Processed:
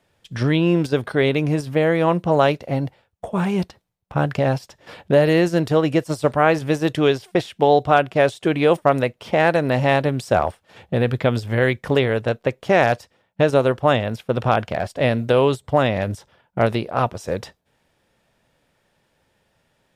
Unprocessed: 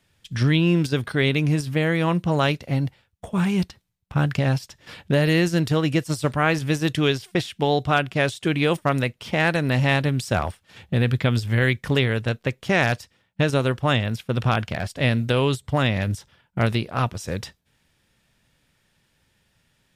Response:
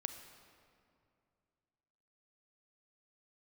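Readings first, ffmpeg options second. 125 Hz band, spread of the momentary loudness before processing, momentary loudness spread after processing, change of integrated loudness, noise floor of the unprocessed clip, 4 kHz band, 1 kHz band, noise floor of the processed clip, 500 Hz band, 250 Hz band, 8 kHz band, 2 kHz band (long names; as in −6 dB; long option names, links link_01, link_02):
−1.5 dB, 8 LU, 9 LU, +3.0 dB, −68 dBFS, −2.5 dB, +6.0 dB, −68 dBFS, +7.0 dB, +1.5 dB, can't be measured, 0.0 dB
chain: -af "equalizer=frequency=610:width=0.62:gain=12,volume=-3.5dB"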